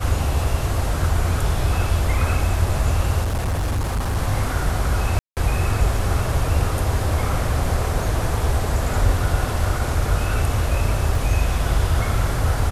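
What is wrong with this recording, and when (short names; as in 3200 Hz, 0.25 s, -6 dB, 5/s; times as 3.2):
3.22–4.17 clipped -18.5 dBFS
5.19–5.37 gap 0.178 s
11.15 gap 2.2 ms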